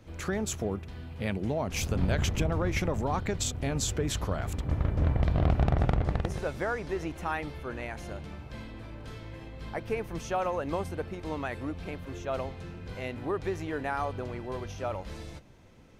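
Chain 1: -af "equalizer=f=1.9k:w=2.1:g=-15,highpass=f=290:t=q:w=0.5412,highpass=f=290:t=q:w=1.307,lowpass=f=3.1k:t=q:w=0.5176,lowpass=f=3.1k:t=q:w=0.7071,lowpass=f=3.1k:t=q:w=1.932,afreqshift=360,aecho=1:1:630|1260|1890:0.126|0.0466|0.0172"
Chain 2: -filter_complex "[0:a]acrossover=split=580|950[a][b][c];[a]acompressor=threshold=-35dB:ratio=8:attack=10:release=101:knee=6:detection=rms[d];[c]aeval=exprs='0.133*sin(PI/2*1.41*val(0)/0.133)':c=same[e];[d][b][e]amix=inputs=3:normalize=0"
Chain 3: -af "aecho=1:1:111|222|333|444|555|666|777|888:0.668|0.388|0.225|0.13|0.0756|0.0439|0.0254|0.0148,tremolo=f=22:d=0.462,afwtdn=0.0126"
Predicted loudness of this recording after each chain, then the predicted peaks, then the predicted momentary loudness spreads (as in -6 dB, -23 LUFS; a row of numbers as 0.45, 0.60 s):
-36.5, -32.5, -32.0 LUFS; -15.5, -15.5, -8.5 dBFS; 16, 13, 14 LU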